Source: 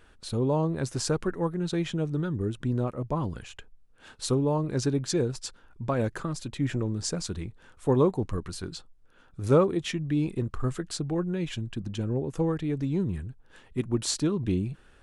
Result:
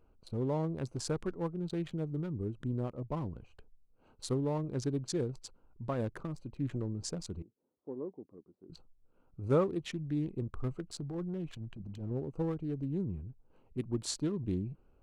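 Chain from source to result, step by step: local Wiener filter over 25 samples; 7.42–8.70 s: ladder band-pass 370 Hz, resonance 25%; 10.99–12.11 s: transient shaper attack -11 dB, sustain +1 dB; trim -7 dB

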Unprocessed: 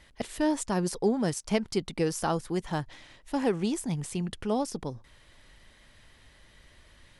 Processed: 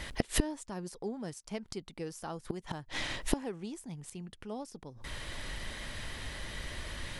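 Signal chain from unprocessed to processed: inverted gate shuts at -28 dBFS, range -28 dB; trim +15.5 dB

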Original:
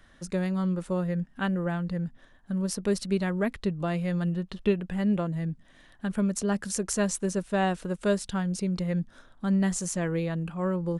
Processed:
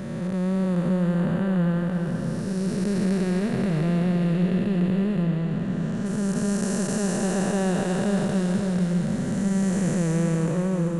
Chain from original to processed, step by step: spectral blur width 916 ms; 5.23–6.06 s: low-pass 6.2 kHz 12 dB/octave; echo that smears into a reverb 504 ms, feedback 46%, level -9 dB; trim +8.5 dB

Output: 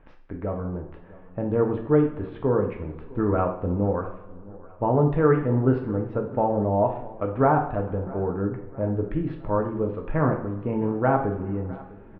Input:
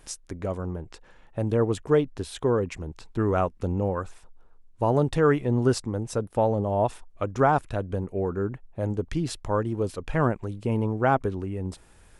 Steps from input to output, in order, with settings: Bessel low-pass 1.5 kHz, order 6; on a send: feedback delay 656 ms, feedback 44%, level -20.5 dB; on the sum: two-slope reverb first 0.53 s, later 2.1 s, from -18 dB, DRR 1.5 dB

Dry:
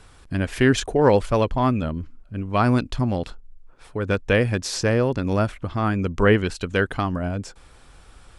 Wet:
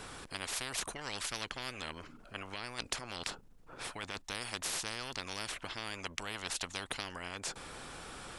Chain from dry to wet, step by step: 1.75–4.22 s: compressor with a negative ratio -25 dBFS, ratio -1; spectrum-flattening compressor 10:1; trim -7.5 dB

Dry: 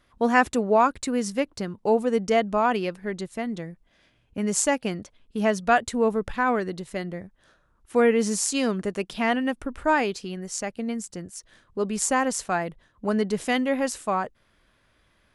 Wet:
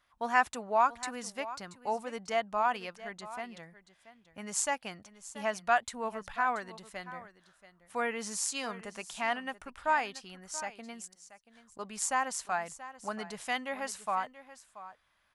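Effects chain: resonant low shelf 580 Hz -10 dB, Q 1.5; 11.13–11.79 s: inverted gate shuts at -38 dBFS, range -26 dB; delay 681 ms -15.5 dB; trim -7 dB

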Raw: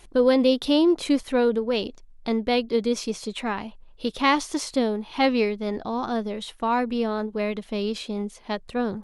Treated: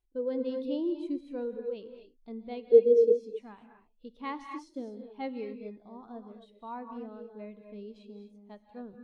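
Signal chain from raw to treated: 2.71–3.16 s: peaking EQ 450 Hz +14 dB 1.1 oct; gated-style reverb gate 280 ms rising, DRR 3.5 dB; spectral contrast expander 1.5:1; trim -8.5 dB

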